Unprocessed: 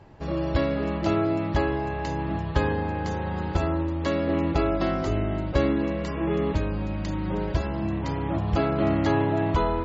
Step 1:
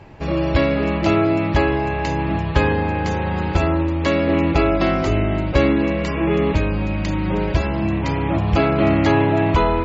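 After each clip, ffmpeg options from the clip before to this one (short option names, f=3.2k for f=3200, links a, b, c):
-filter_complex "[0:a]equalizer=f=2.4k:t=o:w=0.48:g=7.5,asplit=2[a][b];[b]asoftclip=type=tanh:threshold=-19.5dB,volume=-8dB[c];[a][c]amix=inputs=2:normalize=0,volume=4.5dB"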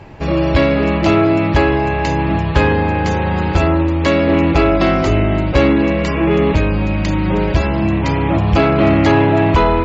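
-af "acontrast=61,volume=-1dB"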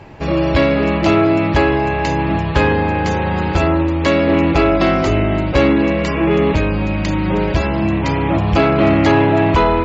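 -af "lowshelf=f=110:g=-4"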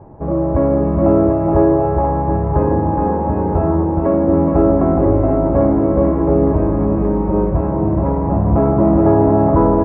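-filter_complex "[0:a]lowpass=f=1k:w=0.5412,lowpass=f=1k:w=1.3066,asplit=2[a][b];[b]aecho=0:1:420|735|971.2|1148|1281:0.631|0.398|0.251|0.158|0.1[c];[a][c]amix=inputs=2:normalize=0,volume=-1dB"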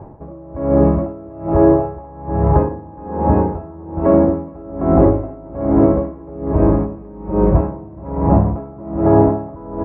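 -af "alimiter=limit=-6dB:level=0:latency=1:release=218,aeval=exprs='val(0)*pow(10,-25*(0.5-0.5*cos(2*PI*1.2*n/s))/20)':c=same,volume=5dB"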